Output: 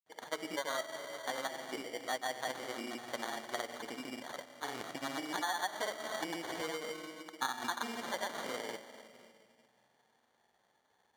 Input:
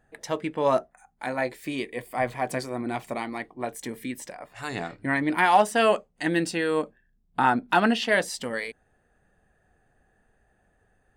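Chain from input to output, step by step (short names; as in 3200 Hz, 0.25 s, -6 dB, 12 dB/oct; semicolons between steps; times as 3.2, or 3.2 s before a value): on a send at -10.5 dB: reverb RT60 2.1 s, pre-delay 54 ms; on the sum: grains, grains 20/s, pitch spread up and down by 0 st; sample-and-hold 17×; compressor 16:1, threshold -29 dBFS, peak gain reduction 15.5 dB; weighting filter A; gain -2.5 dB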